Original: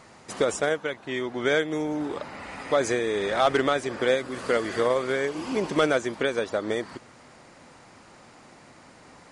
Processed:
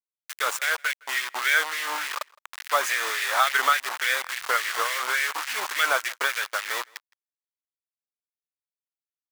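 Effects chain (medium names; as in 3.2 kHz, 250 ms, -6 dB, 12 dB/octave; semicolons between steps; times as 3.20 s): bit crusher 5-bit; LFO high-pass sine 3.5 Hz 970–2000 Hz; echo from a far wall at 28 m, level -26 dB; trim +1 dB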